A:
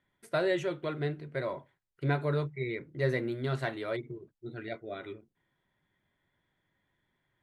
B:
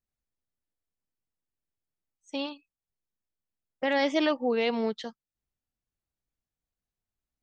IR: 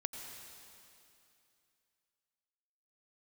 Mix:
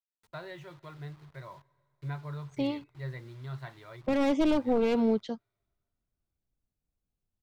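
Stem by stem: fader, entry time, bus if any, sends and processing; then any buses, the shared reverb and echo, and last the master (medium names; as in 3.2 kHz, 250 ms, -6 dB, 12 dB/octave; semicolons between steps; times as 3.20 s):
-15.0 dB, 0.00 s, send -19.5 dB, word length cut 8-bit, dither none; graphic EQ 125/250/500/1000/2000/4000 Hz +6/-11/-6/+12/+4/+9 dB
+0.5 dB, 0.25 s, no send, one-sided wavefolder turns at -26 dBFS; band-stop 1.8 kHz, Q 6.5; saturation -17 dBFS, distortion -20 dB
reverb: on, RT60 2.7 s, pre-delay 82 ms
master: tilt shelf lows +7 dB, about 630 Hz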